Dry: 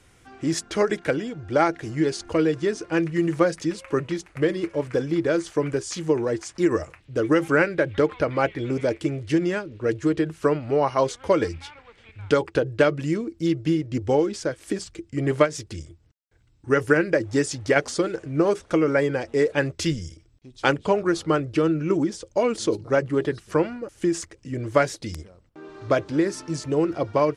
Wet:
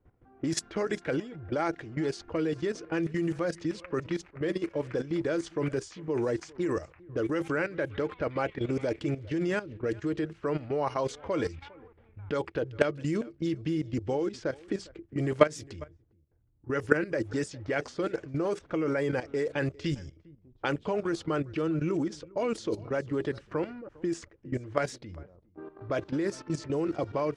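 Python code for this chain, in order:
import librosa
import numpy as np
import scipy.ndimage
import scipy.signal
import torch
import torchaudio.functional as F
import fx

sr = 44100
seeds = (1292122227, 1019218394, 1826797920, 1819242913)

y = fx.level_steps(x, sr, step_db=14)
y = y + 10.0 ** (-23.0 / 20.0) * np.pad(y, (int(404 * sr / 1000.0), 0))[:len(y)]
y = fx.env_lowpass(y, sr, base_hz=760.0, full_db=-25.0)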